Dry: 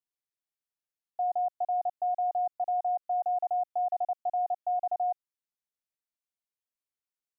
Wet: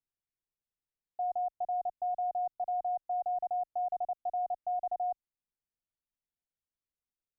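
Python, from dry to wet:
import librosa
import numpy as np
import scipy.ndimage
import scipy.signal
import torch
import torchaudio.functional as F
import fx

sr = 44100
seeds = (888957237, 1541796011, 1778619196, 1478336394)

y = fx.tilt_eq(x, sr, slope=-3.5)
y = y * 10.0 ** (-5.5 / 20.0)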